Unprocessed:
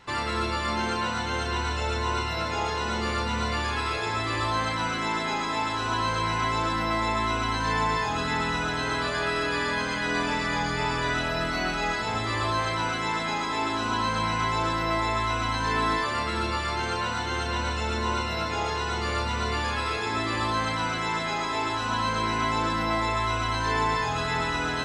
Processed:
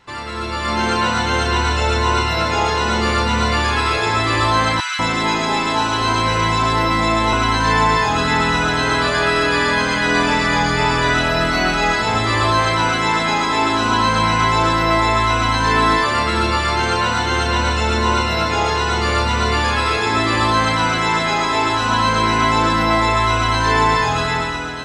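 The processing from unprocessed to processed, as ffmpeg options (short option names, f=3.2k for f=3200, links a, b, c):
-filter_complex "[0:a]asettb=1/sr,asplit=3[a][b][c];[a]atrim=end=4.804[d];[b]atrim=start=4.8:end=7.33,asetpts=PTS-STARTPTS,afade=t=in:d=0.004:c=qsin,afade=t=out:st=2.526:d=0.004:c=qsin,acrossover=split=1300[e][f];[e]adelay=190[g];[g][f]amix=inputs=2:normalize=0,atrim=end_sample=111573[h];[c]atrim=start=7.326[i];[d][h]acrossfade=d=0.004:c1=hsin:c2=qsin[j];[j][i]acrossfade=d=0.004:c1=qsin:c2=hsin,dynaudnorm=f=120:g=11:m=11dB"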